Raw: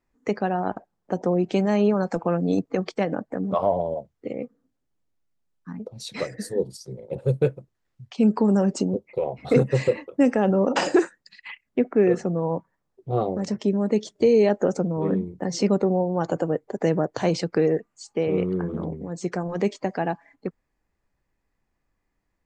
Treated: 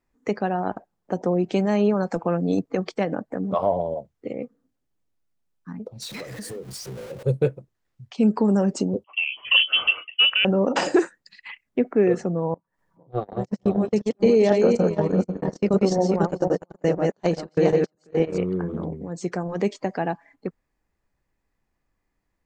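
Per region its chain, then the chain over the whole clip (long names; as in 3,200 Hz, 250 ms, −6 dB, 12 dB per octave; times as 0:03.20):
0:06.02–0:07.23: converter with a step at zero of −35.5 dBFS + downward compressor 12 to 1, threshold −31 dBFS
0:09.04–0:10.45: voice inversion scrambler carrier 3,200 Hz + notch filter 360 Hz, Q 9.5
0:12.54–0:18.38: feedback delay that plays each chunk backwards 246 ms, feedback 49%, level −2 dB + noise gate −22 dBFS, range −40 dB + upward compression, threshold −38 dBFS
whole clip: no processing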